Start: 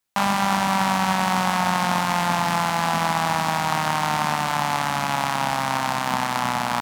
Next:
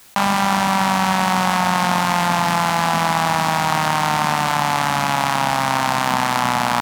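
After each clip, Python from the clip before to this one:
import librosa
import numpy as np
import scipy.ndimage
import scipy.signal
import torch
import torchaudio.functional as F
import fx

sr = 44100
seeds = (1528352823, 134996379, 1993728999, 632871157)

y = fx.env_flatten(x, sr, amount_pct=50)
y = y * librosa.db_to_amplitude(2.5)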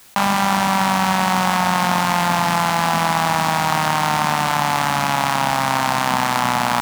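y = fx.mod_noise(x, sr, seeds[0], snr_db=21)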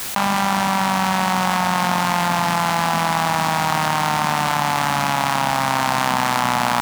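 y = fx.env_flatten(x, sr, amount_pct=70)
y = y * librosa.db_to_amplitude(-2.5)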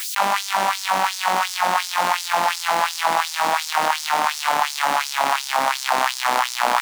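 y = fx.filter_lfo_highpass(x, sr, shape='sine', hz=2.8, low_hz=370.0, high_hz=5400.0, q=1.9)
y = y * librosa.db_to_amplitude(-1.5)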